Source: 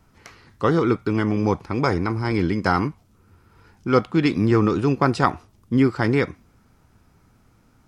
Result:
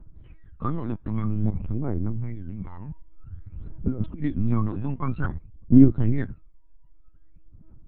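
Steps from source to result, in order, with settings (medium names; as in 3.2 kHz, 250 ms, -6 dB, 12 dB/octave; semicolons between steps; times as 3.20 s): tilt EQ -4 dB/octave; 1.50–4.22 s: compressor with a negative ratio -21 dBFS, ratio -1; phaser 0.52 Hz, delay 1.2 ms, feedback 79%; LPC vocoder at 8 kHz pitch kept; trim -16 dB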